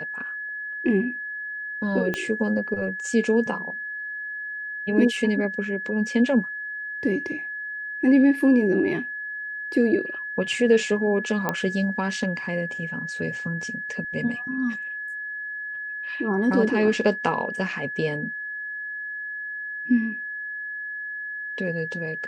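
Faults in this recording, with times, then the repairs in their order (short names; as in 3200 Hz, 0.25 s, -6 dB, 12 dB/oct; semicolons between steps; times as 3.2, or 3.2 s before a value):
tone 1700 Hz -30 dBFS
2.14 pop -13 dBFS
11.49 pop -10 dBFS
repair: de-click; notch 1700 Hz, Q 30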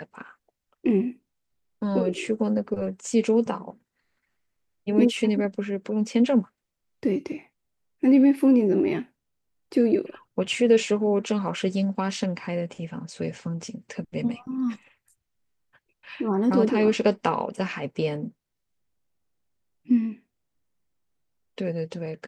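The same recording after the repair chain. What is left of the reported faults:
2.14 pop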